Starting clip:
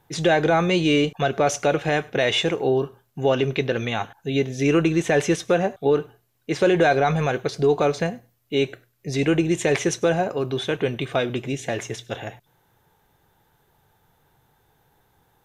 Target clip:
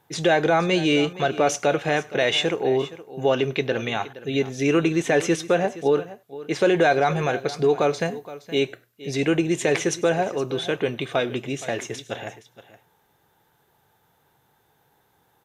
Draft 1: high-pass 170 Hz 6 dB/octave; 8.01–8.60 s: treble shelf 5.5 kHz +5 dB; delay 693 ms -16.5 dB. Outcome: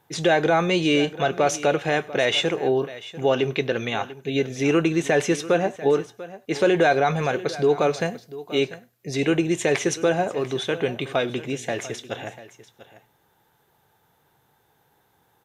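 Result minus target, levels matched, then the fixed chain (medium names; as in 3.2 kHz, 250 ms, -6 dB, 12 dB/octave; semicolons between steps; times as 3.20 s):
echo 224 ms late
high-pass 170 Hz 6 dB/octave; 8.01–8.60 s: treble shelf 5.5 kHz +5 dB; delay 469 ms -16.5 dB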